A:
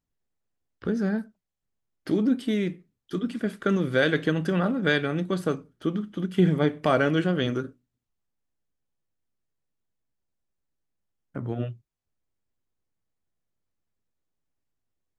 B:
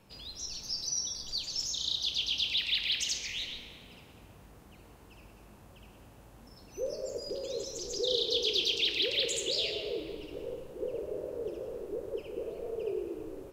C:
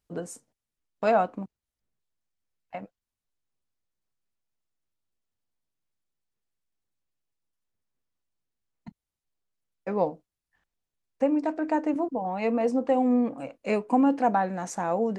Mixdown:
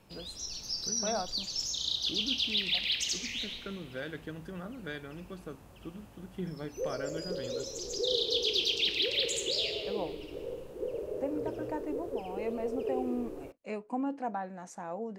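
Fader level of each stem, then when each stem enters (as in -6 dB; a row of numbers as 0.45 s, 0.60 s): -17.5 dB, 0.0 dB, -12.0 dB; 0.00 s, 0.00 s, 0.00 s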